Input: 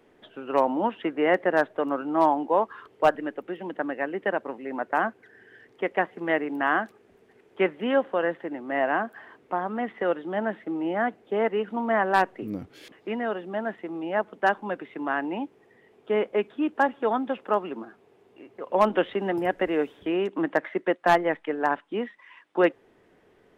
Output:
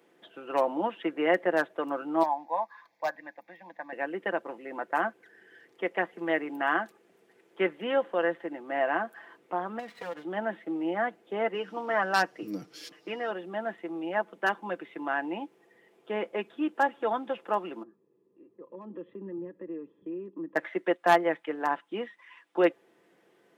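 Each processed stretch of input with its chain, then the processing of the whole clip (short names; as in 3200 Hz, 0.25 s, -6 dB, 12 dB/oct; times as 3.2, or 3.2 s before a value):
2.23–3.93 low shelf 330 Hz -11.5 dB + fixed phaser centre 2000 Hz, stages 8
9.79–10.24 minimum comb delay 4.2 ms + compressor 12:1, threshold -29 dBFS
11.54–13.31 bell 5300 Hz +12.5 dB 0.55 oct + comb 6.6 ms, depth 50%
17.83–20.56 compressor 3:1, threshold -28 dBFS + running mean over 60 samples
whole clip: HPF 200 Hz 12 dB/oct; high shelf 4400 Hz +7 dB; comb 5.9 ms, depth 46%; gain -4.5 dB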